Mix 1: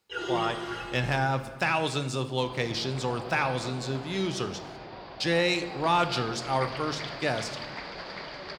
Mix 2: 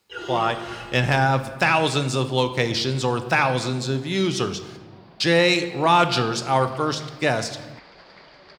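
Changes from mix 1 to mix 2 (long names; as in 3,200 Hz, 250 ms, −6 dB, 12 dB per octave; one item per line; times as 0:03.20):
speech +7.5 dB
second sound −8.5 dB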